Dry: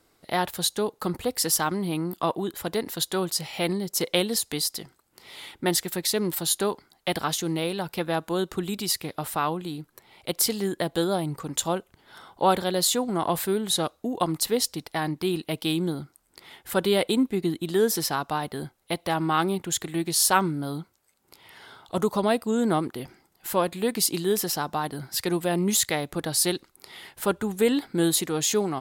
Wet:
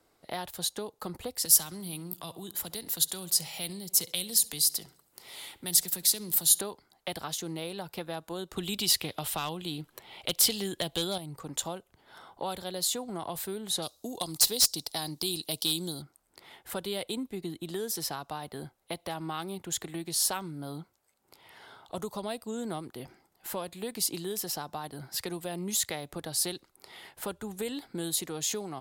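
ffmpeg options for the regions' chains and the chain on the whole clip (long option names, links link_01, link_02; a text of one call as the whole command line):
ffmpeg -i in.wav -filter_complex "[0:a]asettb=1/sr,asplit=3[link_01][link_02][link_03];[link_01]atrim=end=1.454[link_04];[link_02]atrim=start=1.45:end=6.61,asetpts=PTS-STARTPTS,afade=type=in:duration=0.004:curve=qsin,afade=type=out:start_time=5.156:duration=0.004:curve=qsin,acrossover=split=160|3000[link_05][link_06][link_07];[link_06]acompressor=threshold=-43dB:ratio=3:attack=3.2:release=140:knee=2.83:detection=peak[link_08];[link_05][link_08][link_07]amix=inputs=3:normalize=0,highshelf=frequency=5400:gain=12,asplit=2[link_09][link_10];[link_10]adelay=67,lowpass=frequency=4700:poles=1,volume=-18.5dB,asplit=2[link_11][link_12];[link_12]adelay=67,lowpass=frequency=4700:poles=1,volume=0.54,asplit=2[link_13][link_14];[link_14]adelay=67,lowpass=frequency=4700:poles=1,volume=0.54,asplit=2[link_15][link_16];[link_16]adelay=67,lowpass=frequency=4700:poles=1,volume=0.54,asplit=2[link_17][link_18];[link_18]adelay=67,lowpass=frequency=4700:poles=1,volume=0.54[link_19];[link_09][link_11][link_13][link_15][link_17][link_19]amix=inputs=6:normalize=0,atrim=end_sample=227556[link_20];[link_03]atrim=start=6.606[link_21];[link_04][link_20]acrossfade=duration=0.004:curve1=hsin:curve2=qsin[link_22];[link_22][link_21]acrossfade=duration=0.004:curve1=qsin:curve2=hsin,asettb=1/sr,asplit=3[link_23][link_24][link_25];[link_23]atrim=end=8.564[link_26];[link_24]atrim=start=8.56:end=11.18,asetpts=PTS-STARTPTS,afade=type=in:duration=0.004:curve=qsin,afade=type=out:start_time=2.616:duration=0.004:curve=qsin,equalizer=frequency=3100:width=1.9:gain=8,asoftclip=type=hard:threshold=-16dB,acontrast=65[link_27];[link_25]atrim=start=11.176[link_28];[link_26][link_27]acrossfade=duration=0.004:curve1=hsin:curve2=qsin[link_29];[link_29][link_28]acrossfade=duration=0.004:curve1=qsin:curve2=hsin,asettb=1/sr,asplit=3[link_30][link_31][link_32];[link_30]atrim=end=13.824[link_33];[link_31]atrim=start=13.82:end=16.02,asetpts=PTS-STARTPTS,afade=type=in:duration=0.004:curve=qsin,afade=type=out:start_time=2.196:duration=0.004:curve=qsin,highshelf=frequency=3100:width_type=q:width=1.5:gain=13,asoftclip=type=hard:threshold=-11.5dB[link_34];[link_32]atrim=start=16.016[link_35];[link_33][link_34]acrossfade=duration=0.004:curve1=hsin:curve2=qsin[link_36];[link_36][link_35]acrossfade=duration=0.004:curve1=qsin:curve2=hsin,equalizer=frequency=680:width_type=o:width=1.3:gain=4.5,acrossover=split=120|3000[link_37][link_38][link_39];[link_38]acompressor=threshold=-31dB:ratio=3[link_40];[link_37][link_40][link_39]amix=inputs=3:normalize=0,volume=-5.5dB" out.wav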